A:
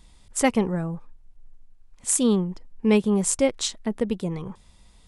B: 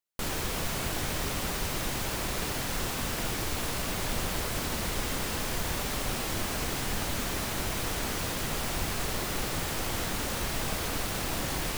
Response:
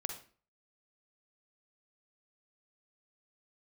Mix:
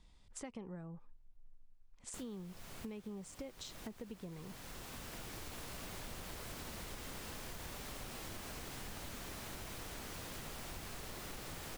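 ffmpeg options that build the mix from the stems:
-filter_complex "[0:a]alimiter=limit=-15.5dB:level=0:latency=1:release=119,acrossover=split=460[link_01][link_02];[link_02]acompressor=threshold=-25dB:ratio=6[link_03];[link_01][link_03]amix=inputs=2:normalize=0,lowpass=6400,volume=-11dB,asplit=2[link_04][link_05];[1:a]adelay=1950,volume=-5.5dB[link_06];[link_05]apad=whole_len=605425[link_07];[link_06][link_07]sidechaincompress=threshold=-51dB:ratio=4:attack=7.2:release=1240[link_08];[link_04][link_08]amix=inputs=2:normalize=0,acompressor=threshold=-44dB:ratio=6"

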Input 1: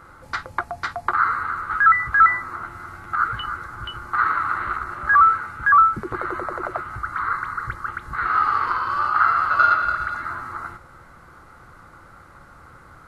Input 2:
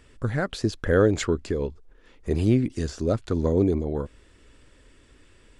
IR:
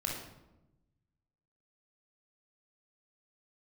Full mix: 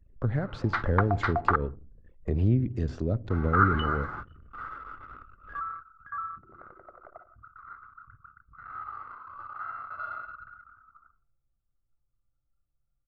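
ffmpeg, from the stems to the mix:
-filter_complex "[0:a]adelay=400,volume=-4dB,asplit=3[link_01][link_02][link_03];[link_01]atrim=end=1.56,asetpts=PTS-STARTPTS,afade=type=out:start_time=1.556:duration=0.004:curve=hsin[link_04];[link_02]atrim=start=1.56:end=3.3,asetpts=PTS-STARTPTS,volume=0[link_05];[link_03]atrim=start=3.3,asetpts=PTS-STARTPTS,afade=type=in:duration=0.004:curve=hsin[link_06];[link_04][link_05][link_06]concat=n=3:v=0:a=1,asplit=2[link_07][link_08];[link_08]volume=-23.5dB[link_09];[1:a]acrossover=split=200[link_10][link_11];[link_11]acompressor=threshold=-37dB:ratio=5[link_12];[link_10][link_12]amix=inputs=2:normalize=0,volume=-0.5dB,asplit=3[link_13][link_14][link_15];[link_14]volume=-19.5dB[link_16];[link_15]apad=whole_len=594223[link_17];[link_07][link_17]sidechaingate=range=-33dB:threshold=-48dB:ratio=16:detection=peak[link_18];[2:a]atrim=start_sample=2205[link_19];[link_09][link_16]amix=inputs=2:normalize=0[link_20];[link_20][link_19]afir=irnorm=-1:irlink=0[link_21];[link_18][link_13][link_21]amix=inputs=3:normalize=0,anlmdn=0.0158,lowpass=3400,equalizer=frequency=590:width=0.75:gain=5"

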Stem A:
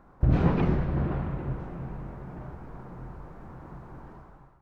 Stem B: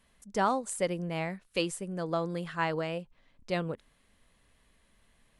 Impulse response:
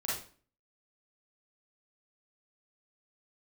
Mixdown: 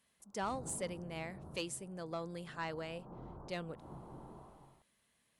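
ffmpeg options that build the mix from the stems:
-filter_complex "[0:a]lowpass=frequency=1100:width=0.5412,lowpass=frequency=1100:width=1.3066,lowshelf=frequency=91:gain=-11,adelay=200,volume=-5.5dB,afade=type=in:start_time=2.28:duration=0.5:silence=0.266073,asplit=2[link_01][link_02];[link_02]volume=-10.5dB[link_03];[1:a]highpass=100,highshelf=frequency=3500:gain=7.5,volume=-10dB,asplit=2[link_04][link_05];[link_05]apad=whole_len=212458[link_06];[link_01][link_06]sidechaincompress=threshold=-56dB:ratio=8:attack=16:release=156[link_07];[2:a]atrim=start_sample=2205[link_08];[link_03][link_08]afir=irnorm=-1:irlink=0[link_09];[link_07][link_04][link_09]amix=inputs=3:normalize=0,asoftclip=type=tanh:threshold=-28dB"

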